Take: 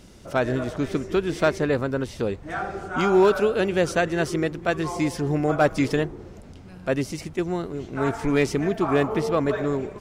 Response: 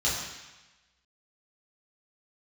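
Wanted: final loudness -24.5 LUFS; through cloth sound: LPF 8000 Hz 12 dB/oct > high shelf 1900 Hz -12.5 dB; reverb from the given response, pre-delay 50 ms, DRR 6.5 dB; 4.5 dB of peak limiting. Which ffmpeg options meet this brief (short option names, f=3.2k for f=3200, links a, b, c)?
-filter_complex "[0:a]alimiter=limit=-14.5dB:level=0:latency=1,asplit=2[a][b];[1:a]atrim=start_sample=2205,adelay=50[c];[b][c]afir=irnorm=-1:irlink=0,volume=-17dB[d];[a][d]amix=inputs=2:normalize=0,lowpass=8k,highshelf=f=1.9k:g=-12.5,volume=1.5dB"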